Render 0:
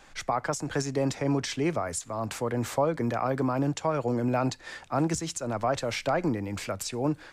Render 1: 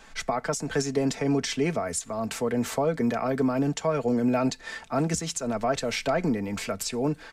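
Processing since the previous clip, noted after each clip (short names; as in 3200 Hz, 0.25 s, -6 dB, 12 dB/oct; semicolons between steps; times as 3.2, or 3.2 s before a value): comb 4.5 ms, depth 53%; dynamic EQ 1000 Hz, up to -6 dB, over -41 dBFS, Q 1.7; gain +2 dB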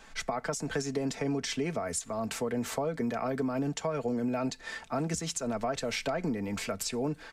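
compressor, threshold -25 dBFS, peak gain reduction 5.5 dB; gain -2.5 dB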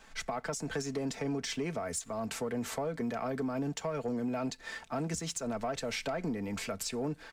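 sample leveller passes 1; gain -6 dB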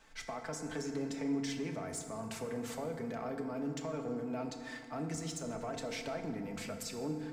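FDN reverb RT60 2.1 s, low-frequency decay 1.25×, high-frequency decay 0.5×, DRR 4 dB; gain -6.5 dB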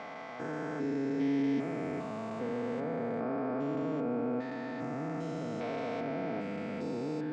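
stepped spectrum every 0.4 s; BPF 150–2500 Hz; gain +7.5 dB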